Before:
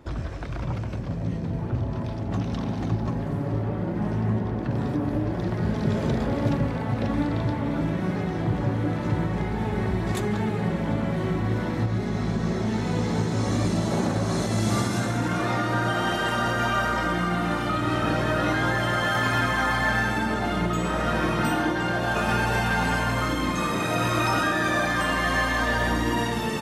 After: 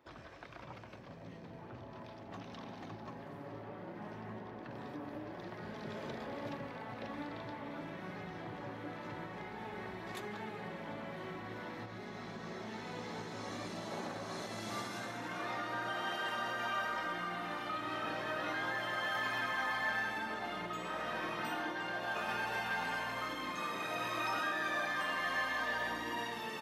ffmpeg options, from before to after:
-filter_complex "[0:a]asettb=1/sr,asplit=3[a][b][c];[a]atrim=end=7.884[d];[b]atrim=start=7.88:end=8.38,asetpts=PTS-STARTPTS,afade=t=in:d=0.004:c=qsin,afade=t=out:st=0.496:d=0.004:c=qsin,asubboost=boost=11.5:cutoff=190[e];[c]atrim=start=8.376[f];[d][e]acrossfade=d=0.004:c1=hsin:c2=qsin[g];[g][f]acrossfade=d=0.004:c1=qsin:c2=hsin,highpass=f=840:p=1,equalizer=f=8.4k:w=0.99:g=-9.5,bandreject=f=1.4k:w=25,volume=-9dB"

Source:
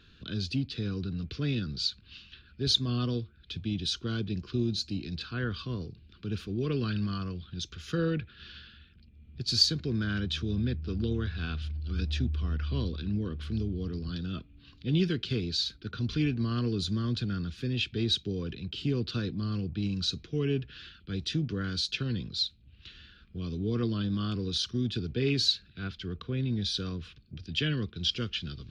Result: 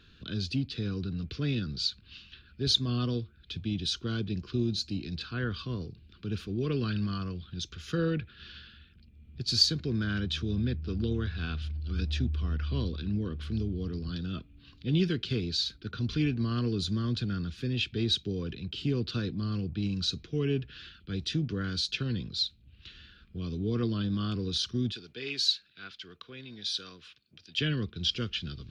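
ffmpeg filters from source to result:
-filter_complex "[0:a]asettb=1/sr,asplit=3[a][b][c];[a]atrim=end=24.924[d];[b]atrim=start=24.92:end=27.59,asetpts=PTS-STARTPTS,afade=t=in:d=0.004:c=qsin,afade=t=out:st=2.666:d=0.004:c=qsin,highpass=f=1.3k:p=1[e];[c]atrim=start=27.586[f];[d][e]acrossfade=d=0.004:c1=hsin:c2=qsin[g];[g][f]acrossfade=d=0.004:c1=qsin:c2=hsin"

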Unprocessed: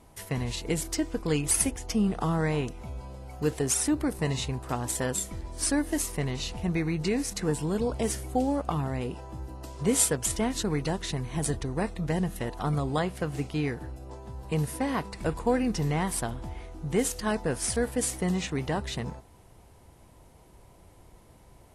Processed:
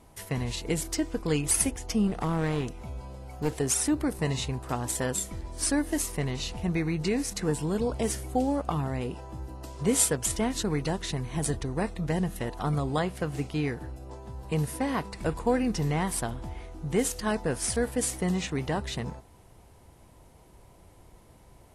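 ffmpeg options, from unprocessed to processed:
-filter_complex "[0:a]asettb=1/sr,asplit=3[a][b][c];[a]atrim=end=2.074[d];[b]atrim=start=2.07:end=3.54,asetpts=PTS-STARTPTS,afade=t=in:d=0.004:c=qsin,afade=t=out:st=1.466:d=0.004:c=qsin,aeval=exprs='clip(val(0),-1,0.0316)':c=same[e];[c]atrim=start=3.536[f];[d][e]acrossfade=d=0.004:c1=hsin:c2=qsin[g];[g][f]acrossfade=d=0.004:c1=qsin:c2=hsin"

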